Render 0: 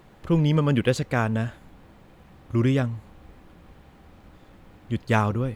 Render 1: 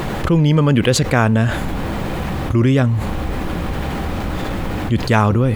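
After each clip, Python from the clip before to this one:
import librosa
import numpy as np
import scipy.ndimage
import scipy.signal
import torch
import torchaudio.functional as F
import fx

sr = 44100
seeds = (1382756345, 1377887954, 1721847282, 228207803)

y = fx.env_flatten(x, sr, amount_pct=70)
y = y * librosa.db_to_amplitude(5.0)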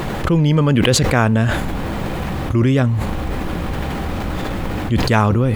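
y = fx.sustainer(x, sr, db_per_s=39.0)
y = y * librosa.db_to_amplitude(-1.0)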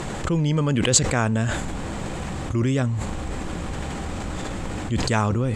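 y = fx.lowpass_res(x, sr, hz=7700.0, q=4.8)
y = y * librosa.db_to_amplitude(-7.0)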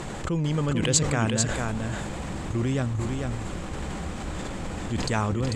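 y = x + 10.0 ** (-4.5 / 20.0) * np.pad(x, (int(444 * sr / 1000.0), 0))[:len(x)]
y = y * librosa.db_to_amplitude(-4.5)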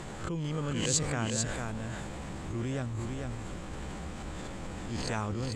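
y = fx.spec_swells(x, sr, rise_s=0.4)
y = y * librosa.db_to_amplitude(-8.5)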